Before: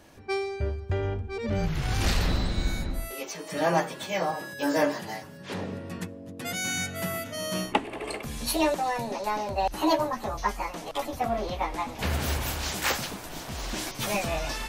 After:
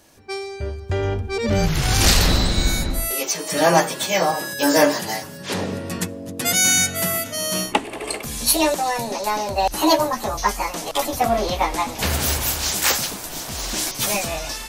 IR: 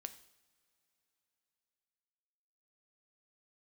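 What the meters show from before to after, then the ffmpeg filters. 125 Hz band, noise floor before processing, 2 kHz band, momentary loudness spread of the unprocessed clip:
+6.5 dB, -43 dBFS, +8.0 dB, 10 LU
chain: -af "bass=f=250:g=-2,treble=f=4k:g=9,dynaudnorm=f=390:g=5:m=13dB,volume=-1dB"

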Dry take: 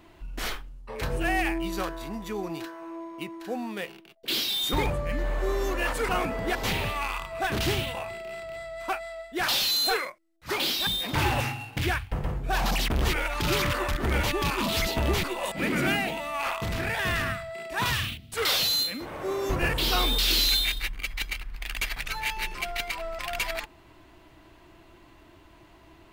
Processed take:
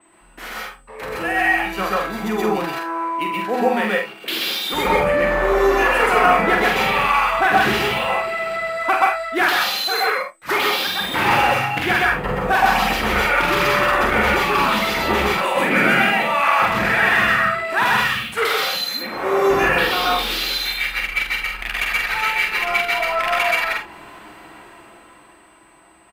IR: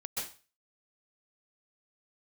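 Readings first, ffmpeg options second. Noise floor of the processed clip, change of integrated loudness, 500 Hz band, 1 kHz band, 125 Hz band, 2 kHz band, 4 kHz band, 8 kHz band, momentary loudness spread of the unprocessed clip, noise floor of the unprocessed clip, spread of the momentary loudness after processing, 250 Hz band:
-49 dBFS, +9.5 dB, +11.0 dB, +14.0 dB, +0.5 dB, +13.0 dB, +4.0 dB, +1.5 dB, 13 LU, -54 dBFS, 8 LU, +7.5 dB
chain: -filter_complex "[0:a]dynaudnorm=f=170:g=21:m=14.5dB[a];[1:a]atrim=start_sample=2205,atrim=end_sample=6174[b];[a][b]afir=irnorm=-1:irlink=0,aeval=exprs='val(0)+0.00398*sin(2*PI*8100*n/s)':c=same,crystalizer=i=9.5:c=0,acompressor=threshold=-10dB:ratio=2,aresample=32000,aresample=44100,acrossover=split=170 2100:gain=0.158 1 0.0708[c][d][e];[c][d][e]amix=inputs=3:normalize=0,aecho=1:1:46|74:0.596|0.237,adynamicequalizer=threshold=0.0178:dfrequency=5200:dqfactor=0.7:tfrequency=5200:tqfactor=0.7:attack=5:release=100:ratio=0.375:range=2.5:mode=cutabove:tftype=highshelf"

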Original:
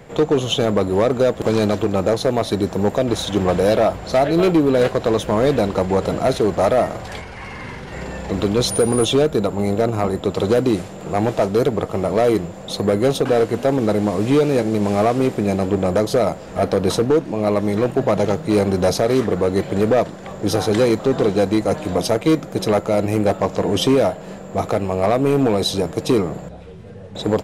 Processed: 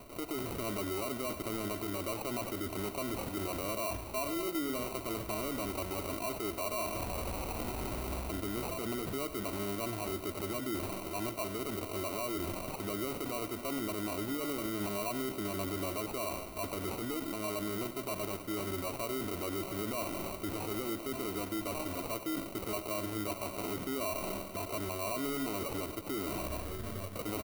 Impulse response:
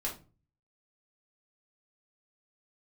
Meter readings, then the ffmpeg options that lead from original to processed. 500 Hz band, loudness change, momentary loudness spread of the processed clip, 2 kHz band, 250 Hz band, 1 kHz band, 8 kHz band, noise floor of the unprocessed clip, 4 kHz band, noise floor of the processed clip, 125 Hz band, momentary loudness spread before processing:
-21.5 dB, -18.0 dB, 3 LU, -13.0 dB, -18.0 dB, -16.0 dB, -10.5 dB, -35 dBFS, -16.0 dB, -44 dBFS, -20.0 dB, 7 LU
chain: -filter_complex "[0:a]aecho=1:1:3.1:0.81,areverse,acompressor=threshold=-28dB:ratio=8,areverse,alimiter=level_in=4dB:limit=-24dB:level=0:latency=1:release=38,volume=-4dB,acrusher=samples=26:mix=1:aa=0.000001,aexciter=amount=1.8:drive=7.9:freq=9.6k,asplit=2[a][b];[b]aecho=0:1:94:0.224[c];[a][c]amix=inputs=2:normalize=0,volume=-2dB"

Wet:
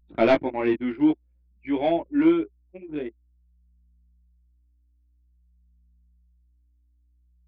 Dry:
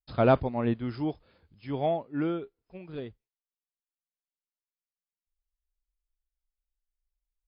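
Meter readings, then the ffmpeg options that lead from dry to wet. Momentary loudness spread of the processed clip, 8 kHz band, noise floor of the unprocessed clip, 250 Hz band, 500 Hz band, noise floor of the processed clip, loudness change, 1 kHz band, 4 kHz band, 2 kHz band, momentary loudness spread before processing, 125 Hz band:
15 LU, n/a, under -85 dBFS, +8.5 dB, +4.0 dB, -64 dBFS, +5.0 dB, +2.0 dB, +6.5 dB, +7.5 dB, 22 LU, -9.0 dB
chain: -af "highpass=280,equalizer=f=320:t=q:w=4:g=9,equalizer=f=480:t=q:w=4:g=-6,equalizer=f=740:t=q:w=4:g=-3,equalizer=f=1.2k:t=q:w=4:g=-7,equalizer=f=2.2k:t=q:w=4:g=7,lowpass=f=3.3k:w=0.5412,lowpass=f=3.3k:w=1.3066,acontrast=69,aeval=exprs='0.596*sin(PI/2*1.58*val(0)/0.596)':c=same,aeval=exprs='val(0)+0.00501*(sin(2*PI*60*n/s)+sin(2*PI*2*60*n/s)/2+sin(2*PI*3*60*n/s)/3+sin(2*PI*4*60*n/s)/4+sin(2*PI*5*60*n/s)/5)':c=same,flanger=delay=17.5:depth=2.6:speed=0.51,anlmdn=25.1,adynamicequalizer=threshold=0.0224:dfrequency=1900:dqfactor=0.7:tfrequency=1900:tqfactor=0.7:attack=5:release=100:ratio=0.375:range=2:mode=boostabove:tftype=highshelf,volume=-4.5dB"

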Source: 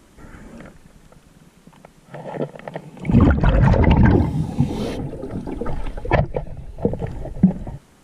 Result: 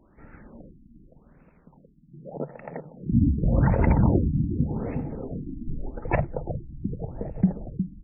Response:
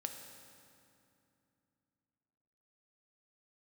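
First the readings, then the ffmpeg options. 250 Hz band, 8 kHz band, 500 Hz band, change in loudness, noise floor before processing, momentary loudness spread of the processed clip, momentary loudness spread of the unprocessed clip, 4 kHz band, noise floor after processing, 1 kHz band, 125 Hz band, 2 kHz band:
-6.0 dB, n/a, -7.5 dB, -6.5 dB, -52 dBFS, 16 LU, 18 LU, under -35 dB, -58 dBFS, -8.0 dB, -6.0 dB, -10.0 dB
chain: -filter_complex "[0:a]asplit=2[a][b];[b]adelay=360,lowpass=f=1.4k:p=1,volume=-7dB,asplit=2[c][d];[d]adelay=360,lowpass=f=1.4k:p=1,volume=0.35,asplit=2[e][f];[f]adelay=360,lowpass=f=1.4k:p=1,volume=0.35,asplit=2[g][h];[h]adelay=360,lowpass=f=1.4k:p=1,volume=0.35[i];[a][c][e][g][i]amix=inputs=5:normalize=0,afftfilt=real='re*lt(b*sr/1024,310*pow(2800/310,0.5+0.5*sin(2*PI*0.85*pts/sr)))':imag='im*lt(b*sr/1024,310*pow(2800/310,0.5+0.5*sin(2*PI*0.85*pts/sr)))':win_size=1024:overlap=0.75,volume=-7dB"

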